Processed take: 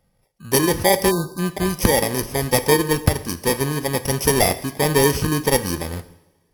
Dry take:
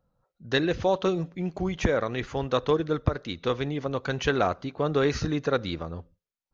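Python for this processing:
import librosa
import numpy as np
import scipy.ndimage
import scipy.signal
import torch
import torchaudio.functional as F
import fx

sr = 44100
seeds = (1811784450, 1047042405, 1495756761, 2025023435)

y = fx.bit_reversed(x, sr, seeds[0], block=32)
y = fx.rev_double_slope(y, sr, seeds[1], early_s=0.78, late_s=3.0, knee_db=-27, drr_db=11.5)
y = np.repeat(y[::2], 2)[:len(y)]
y = fx.spec_erase(y, sr, start_s=1.11, length_s=0.28, low_hz=1600.0, high_hz=3600.0)
y = y * 10.0 ** (7.0 / 20.0)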